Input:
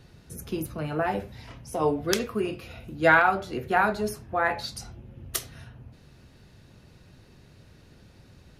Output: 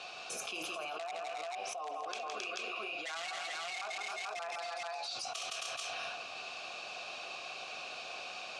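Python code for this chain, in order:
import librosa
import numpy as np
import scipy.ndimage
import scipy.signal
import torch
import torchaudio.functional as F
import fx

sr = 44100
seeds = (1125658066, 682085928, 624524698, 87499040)

p1 = fx.vowel_filter(x, sr, vowel='a')
p2 = 10.0 ** (-26.0 / 20.0) * (np.abs((p1 / 10.0 ** (-26.0 / 20.0) + 3.0) % 4.0 - 2.0) - 1.0)
p3 = scipy.signal.sosfilt(scipy.signal.butter(4, 7900.0, 'lowpass', fs=sr, output='sos'), p2)
p4 = np.diff(p3, prepend=0.0)
p5 = p4 + fx.echo_multitap(p4, sr, ms=(65, 165, 268, 301, 426, 439), db=(-16.5, -6.5, -9.0, -13.5, -12.5, -4.0), dry=0)
p6 = fx.env_flatten(p5, sr, amount_pct=100)
y = F.gain(torch.from_numpy(p6), 1.0).numpy()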